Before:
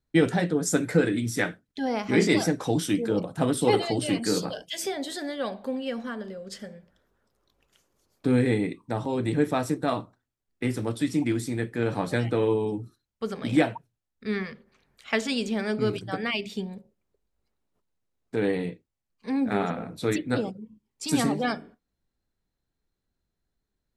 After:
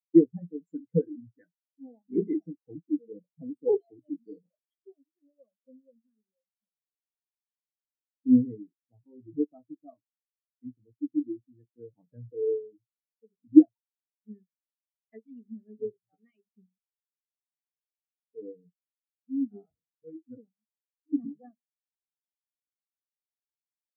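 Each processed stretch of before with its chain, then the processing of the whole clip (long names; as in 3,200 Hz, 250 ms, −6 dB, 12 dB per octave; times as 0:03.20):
0:19.66–0:20.27: mains-hum notches 60/120/180 Hz + one-pitch LPC vocoder at 8 kHz 160 Hz
whole clip: high-pass filter 58 Hz 24 dB per octave; every bin expanded away from the loudest bin 4 to 1; level +5.5 dB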